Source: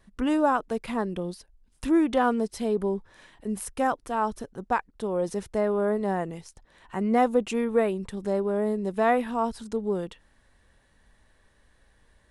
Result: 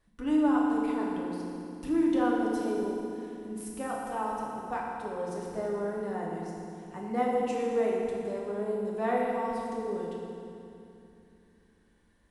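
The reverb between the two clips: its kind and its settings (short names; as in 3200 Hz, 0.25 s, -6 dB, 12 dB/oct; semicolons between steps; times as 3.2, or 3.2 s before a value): FDN reverb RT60 2.7 s, low-frequency decay 1.4×, high-frequency decay 0.85×, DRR -4 dB; gain -11.5 dB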